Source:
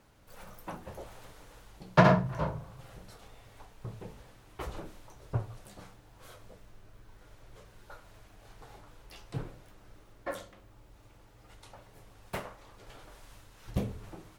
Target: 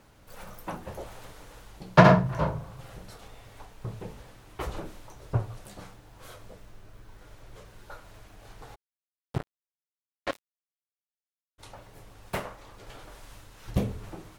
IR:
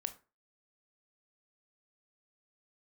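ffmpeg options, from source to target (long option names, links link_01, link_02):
-filter_complex "[0:a]asplit=3[link_01][link_02][link_03];[link_01]afade=type=out:start_time=8.74:duration=0.02[link_04];[link_02]acrusher=bits=4:mix=0:aa=0.5,afade=type=in:start_time=8.74:duration=0.02,afade=type=out:start_time=11.58:duration=0.02[link_05];[link_03]afade=type=in:start_time=11.58:duration=0.02[link_06];[link_04][link_05][link_06]amix=inputs=3:normalize=0,volume=5dB"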